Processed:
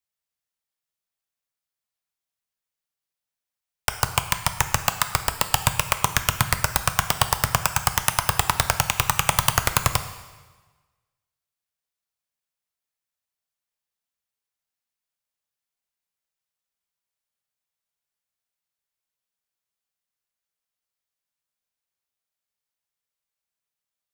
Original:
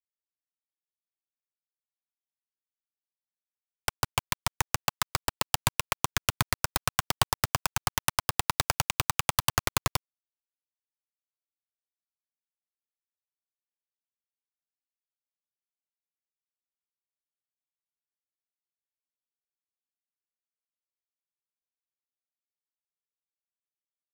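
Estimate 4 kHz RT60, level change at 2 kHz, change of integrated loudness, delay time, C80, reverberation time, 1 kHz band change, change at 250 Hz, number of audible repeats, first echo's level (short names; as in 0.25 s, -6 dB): 1.2 s, +7.0 dB, +6.5 dB, none, 12.5 dB, 1.3 s, +7.0 dB, +5.0 dB, none, none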